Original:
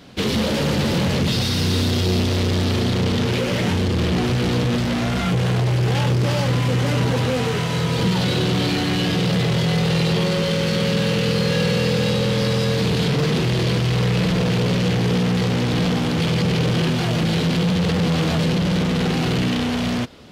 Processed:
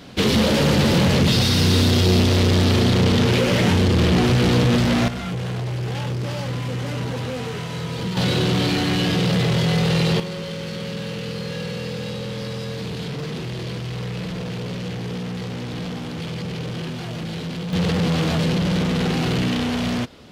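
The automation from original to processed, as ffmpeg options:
-af "asetnsamples=n=441:p=0,asendcmd='5.08 volume volume -7dB;8.17 volume volume 0dB;10.2 volume volume -9.5dB;17.73 volume volume -1dB',volume=1.41"

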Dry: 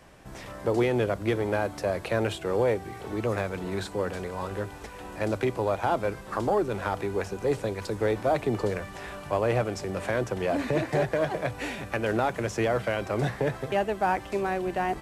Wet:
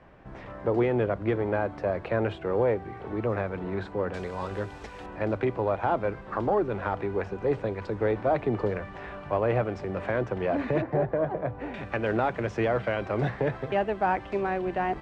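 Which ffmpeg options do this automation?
-af "asetnsamples=n=441:p=0,asendcmd='4.14 lowpass f 5400;5.06 lowpass f 2300;10.82 lowpass f 1100;11.74 lowpass f 2900',lowpass=2000"

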